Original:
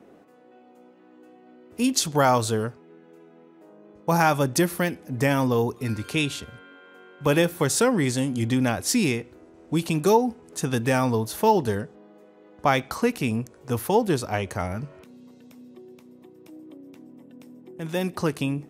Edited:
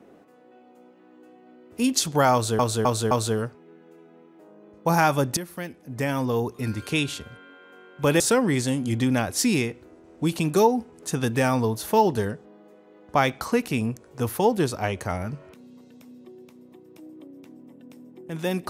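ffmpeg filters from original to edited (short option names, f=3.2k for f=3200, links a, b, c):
-filter_complex "[0:a]asplit=6[a][b][c][d][e][f];[a]atrim=end=2.592[g];[b]atrim=start=2.328:end=2.592[h];[c]atrim=start=2.328:end=2.592[i];[d]atrim=start=2.328:end=4.59,asetpts=PTS-STARTPTS,afade=t=out:st=2.258:d=0.004:c=hsin:silence=0.211349[j];[e]atrim=start=4.59:end=7.422,asetpts=PTS-STARTPTS,afade=t=in:d=1.39:silence=0.211349[k];[f]atrim=start=7.698[l];[g][h]acrossfade=d=0.004:c1=hsin:c2=hsin[m];[m][i]acrossfade=d=0.004:c1=hsin:c2=hsin[n];[j][k]concat=n=2:v=0:a=1[o];[n][o]acrossfade=d=0.004:c1=hsin:c2=hsin[p];[p][l]acrossfade=d=0.004:c1=hsin:c2=hsin"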